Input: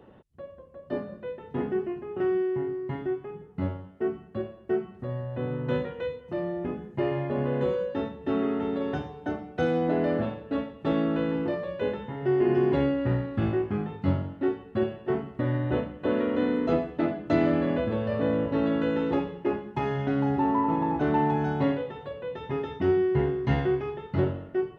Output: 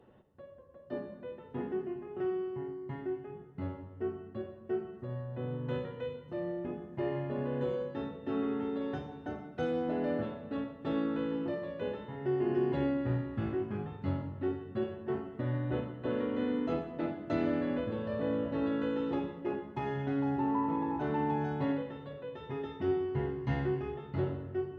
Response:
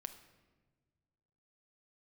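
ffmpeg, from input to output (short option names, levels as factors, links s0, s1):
-filter_complex "[1:a]atrim=start_sample=2205,asetrate=33516,aresample=44100[s0];[0:a][s0]afir=irnorm=-1:irlink=0,volume=0.531"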